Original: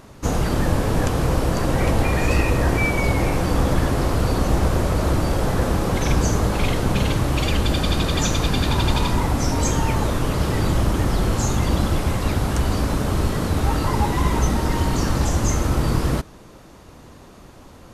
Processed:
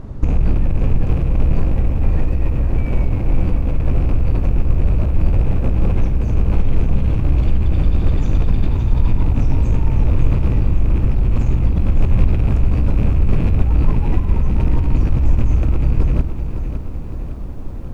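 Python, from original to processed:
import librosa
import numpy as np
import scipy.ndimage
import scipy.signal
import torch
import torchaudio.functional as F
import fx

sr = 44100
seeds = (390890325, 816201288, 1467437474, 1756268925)

y = fx.rattle_buzz(x, sr, strikes_db=-27.0, level_db=-15.0)
y = fx.over_compress(y, sr, threshold_db=-25.0, ratio=-1.0)
y = fx.tilt_eq(y, sr, slope=-4.5)
y = fx.echo_crushed(y, sr, ms=560, feedback_pct=55, bits=8, wet_db=-9.0)
y = y * librosa.db_to_amplitude(-6.0)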